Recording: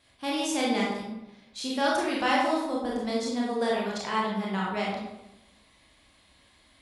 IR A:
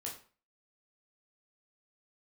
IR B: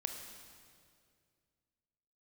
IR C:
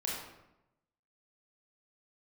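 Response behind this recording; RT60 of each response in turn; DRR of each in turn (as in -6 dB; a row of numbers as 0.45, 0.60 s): C; 0.40, 2.2, 0.90 s; -3.0, 4.0, -5.0 dB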